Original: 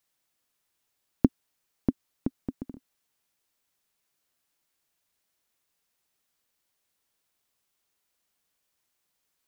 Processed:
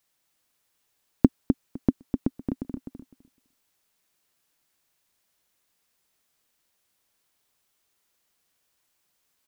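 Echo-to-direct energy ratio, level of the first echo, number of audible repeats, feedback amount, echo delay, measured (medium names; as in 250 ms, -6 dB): -5.5 dB, -5.5 dB, 2, 16%, 254 ms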